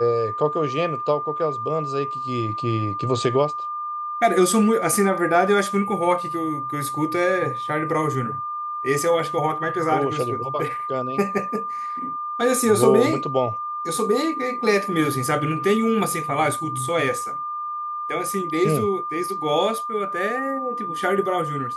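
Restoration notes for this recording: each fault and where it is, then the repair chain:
whistle 1,200 Hz −26 dBFS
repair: notch filter 1,200 Hz, Q 30

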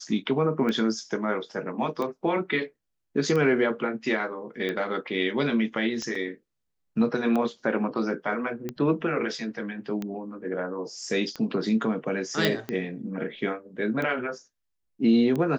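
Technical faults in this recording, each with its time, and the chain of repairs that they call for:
scratch tick 45 rpm −18 dBFS
0:06.15: drop-out 3.7 ms
0:12.45: click −8 dBFS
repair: click removal
repair the gap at 0:06.15, 3.7 ms

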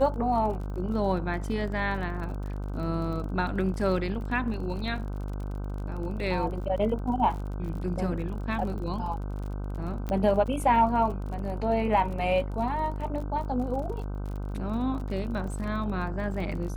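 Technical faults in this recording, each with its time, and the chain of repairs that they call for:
mains buzz 50 Hz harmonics 31 −33 dBFS
surface crackle 40 per second −37 dBFS
0:10.09: click −19 dBFS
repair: click removal
hum removal 50 Hz, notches 31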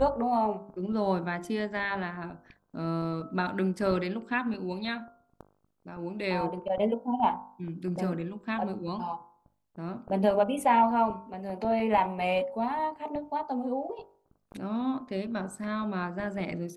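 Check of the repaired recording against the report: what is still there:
none of them is left

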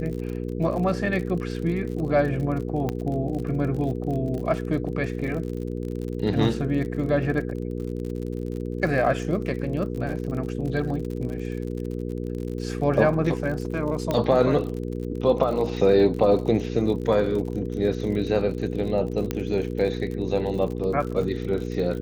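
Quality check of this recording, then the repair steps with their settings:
surface crackle 49 per second −32 dBFS
mains hum 60 Hz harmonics 8 −30 dBFS
0:02.89: click −14 dBFS
0:14.11: click −12 dBFS
0:19.31: click −12 dBFS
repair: click removal
hum removal 60 Hz, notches 8

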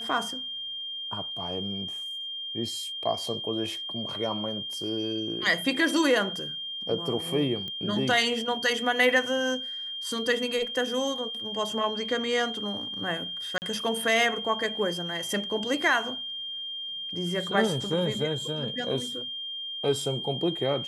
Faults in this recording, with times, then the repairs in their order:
whistle 3,200 Hz −33 dBFS
0:07.68: click −24 dBFS
0:13.58–0:13.62: drop-out 39 ms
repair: click removal
notch filter 3,200 Hz, Q 30
repair the gap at 0:13.58, 39 ms

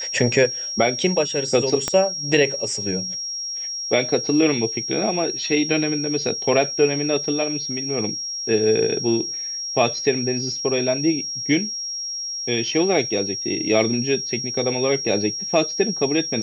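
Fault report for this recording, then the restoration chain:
whistle 5,600 Hz −26 dBFS
0:01.88: click −7 dBFS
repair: click removal
notch filter 5,600 Hz, Q 30

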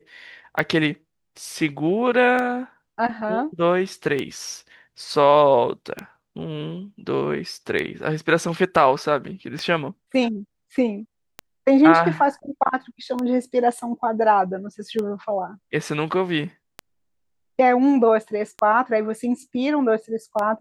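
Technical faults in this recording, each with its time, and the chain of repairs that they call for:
scratch tick 33 1/3 rpm −13 dBFS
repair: click removal

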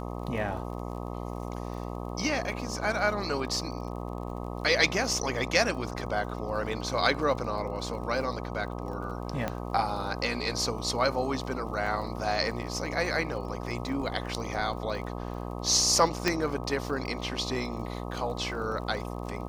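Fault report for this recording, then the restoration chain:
mains buzz 60 Hz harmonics 21 −36 dBFS
surface crackle 37 per second −39 dBFS
0:09.48: click −16 dBFS
0:16.28: click −10 dBFS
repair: click removal
hum removal 60 Hz, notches 21

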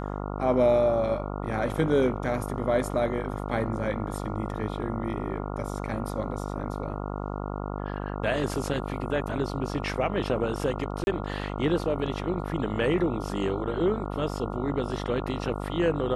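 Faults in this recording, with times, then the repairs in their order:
mains buzz 50 Hz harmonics 28 −33 dBFS
0:11.04–0:11.07: drop-out 31 ms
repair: hum removal 50 Hz, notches 28
repair the gap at 0:11.04, 31 ms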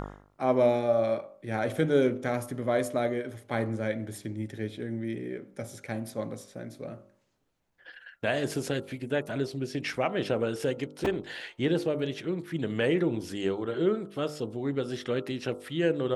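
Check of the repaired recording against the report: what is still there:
none of them is left

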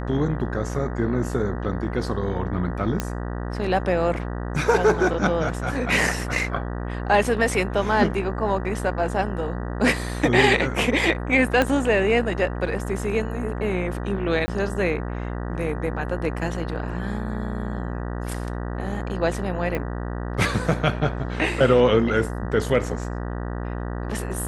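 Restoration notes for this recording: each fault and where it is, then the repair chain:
mains buzz 60 Hz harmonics 32 −29 dBFS
0:03.00: click −9 dBFS
0:11.62: click −7 dBFS
0:14.46–0:14.48: drop-out 20 ms
0:19.75: click −15 dBFS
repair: click removal
hum removal 60 Hz, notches 32
repair the gap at 0:14.46, 20 ms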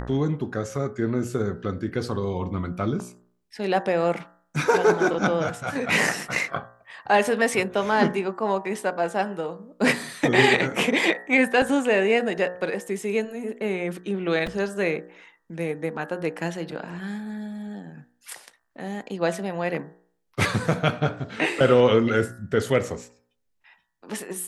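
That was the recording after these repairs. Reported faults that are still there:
0:11.62: click
0:19.75: click

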